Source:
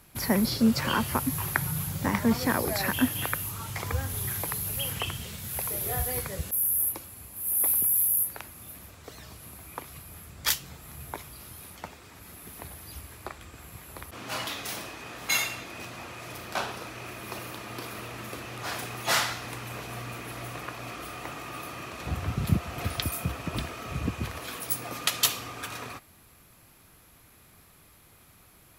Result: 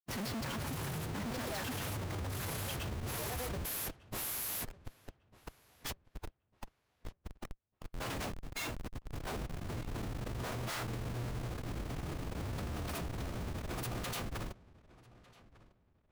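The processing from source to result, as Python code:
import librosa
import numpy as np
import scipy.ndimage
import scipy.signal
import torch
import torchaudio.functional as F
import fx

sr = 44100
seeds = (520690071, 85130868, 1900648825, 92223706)

y = fx.schmitt(x, sr, flips_db=-32.5)
y = fx.stretch_vocoder(y, sr, factor=0.56)
y = fx.echo_filtered(y, sr, ms=1200, feedback_pct=28, hz=4100.0, wet_db=-21)
y = F.gain(torch.from_numpy(y), -5.0).numpy()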